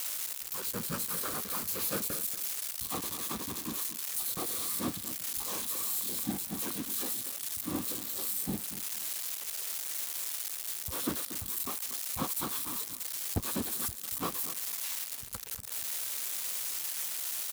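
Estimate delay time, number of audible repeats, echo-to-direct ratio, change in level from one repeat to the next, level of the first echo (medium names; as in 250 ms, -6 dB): 235 ms, 2, -13.0 dB, -14.5 dB, -13.0 dB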